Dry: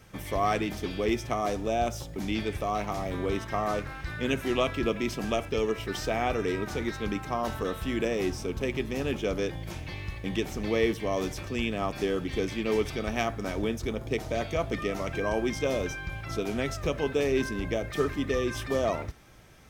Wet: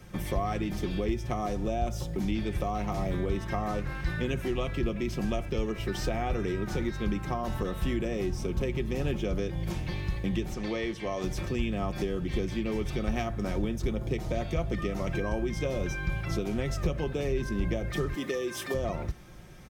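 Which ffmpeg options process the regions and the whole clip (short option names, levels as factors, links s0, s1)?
-filter_complex "[0:a]asettb=1/sr,asplit=3[s0][s1][s2];[s0]atrim=end=10.544[s3];[s1]atrim=start=10.54:end=11.24,asetpts=PTS-STARTPTS,afade=t=in:d=0.004:c=qsin,afade=t=out:st=0.696:d=0.004:c=qsin,lowpass=8000,lowshelf=f=370:g=-10[s4];[s2]atrim=start=11.236[s5];[s3][s4]acrossfade=d=0.004:c1=hsin:c2=qsin[s6];[s6][s5]acrossfade=d=0.004:c1=qsin:c2=hsin,asettb=1/sr,asplit=3[s7][s8][s9];[s7]atrim=end=18.144[s10];[s8]atrim=start=18.14:end=18.74,asetpts=PTS-STARTPTS,afade=t=in:d=0.004:c=qsin,afade=t=out:st=0.596:d=0.004:c=qsin,highpass=280,highshelf=f=6500:g=9[s11];[s9]atrim=start=18.736[s12];[s10][s11]acrossfade=d=0.004:c1=hsin:c2=qsin[s13];[s13][s12]acrossfade=d=0.004:c1=qsin:c2=hsin,lowshelf=f=350:g=7.5,aecho=1:1:5.6:0.42,acrossover=split=120[s14][s15];[s15]acompressor=threshold=0.0355:ratio=6[s16];[s14][s16]amix=inputs=2:normalize=0"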